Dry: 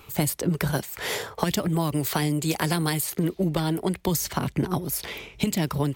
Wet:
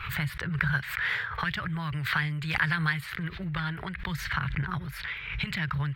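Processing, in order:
drawn EQ curve 140 Hz 0 dB, 260 Hz −22 dB, 710 Hz −16 dB, 1,600 Hz +10 dB, 2,700 Hz −1 dB, 4,000 Hz −6 dB, 6,400 Hz −25 dB
background raised ahead of every attack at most 56 dB per second
level −1.5 dB

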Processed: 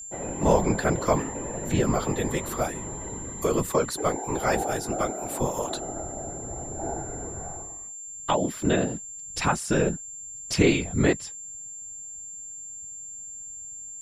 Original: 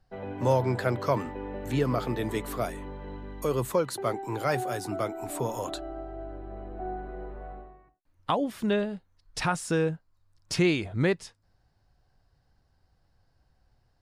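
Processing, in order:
random phases in short frames
steady tone 7,300 Hz −40 dBFS
level +3 dB

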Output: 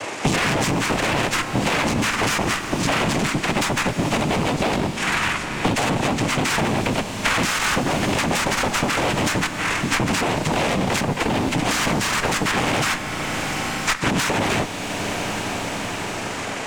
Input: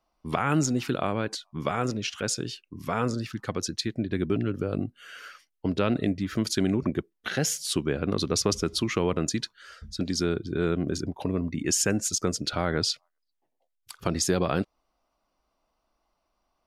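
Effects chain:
hearing-aid frequency compression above 1,900 Hz 4 to 1
in parallel at −3 dB: sine wavefolder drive 15 dB, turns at −8.5 dBFS
on the sum: cochlear-implant simulation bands 4
brickwall limiter −9 dBFS, peak gain reduction 8.5 dB
asymmetric clip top −26.5 dBFS
four-comb reverb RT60 3.6 s, combs from 29 ms, DRR 10 dB
multiband upward and downward compressor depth 100%

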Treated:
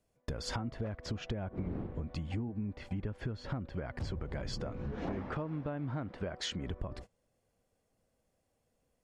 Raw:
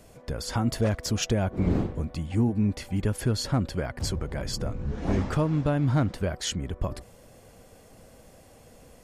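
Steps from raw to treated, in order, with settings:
treble cut that deepens with the level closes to 2,300 Hz, closed at −24 dBFS
noise gate −41 dBFS, range −27 dB
0:04.60–0:06.67: low-shelf EQ 130 Hz −10.5 dB
downward compressor 10 to 1, threshold −35 dBFS, peak gain reduction 16.5 dB
level +1 dB

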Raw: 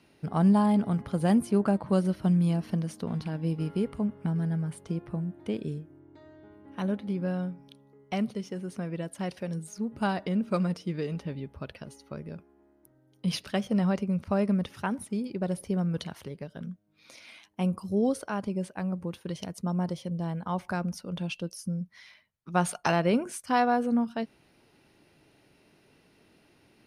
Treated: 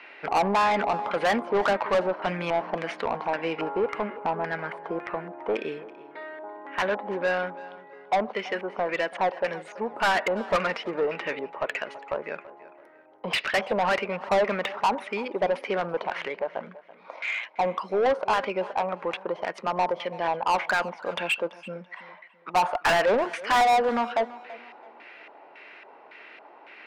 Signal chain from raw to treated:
auto-filter low-pass square 1.8 Hz 910–2,200 Hz
high-pass filter 490 Hz 12 dB per octave
mid-hump overdrive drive 29 dB, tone 1,700 Hz, clips at −8.5 dBFS
high-shelf EQ 3,400 Hz +9.5 dB
tape delay 333 ms, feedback 37%, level −17 dB, low-pass 3,900 Hz
level −4.5 dB

